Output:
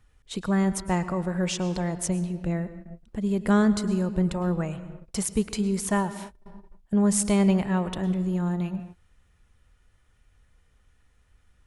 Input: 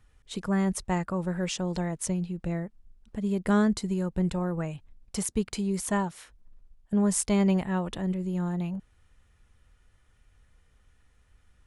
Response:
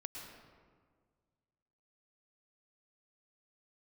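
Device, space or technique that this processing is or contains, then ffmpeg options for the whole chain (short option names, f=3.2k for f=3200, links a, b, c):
keyed gated reverb: -filter_complex "[0:a]asplit=3[a][b][c];[1:a]atrim=start_sample=2205[d];[b][d]afir=irnorm=-1:irlink=0[e];[c]apad=whole_len=514619[f];[e][f]sidechaingate=range=-33dB:threshold=-50dB:ratio=16:detection=peak,volume=-4.5dB[g];[a][g]amix=inputs=2:normalize=0"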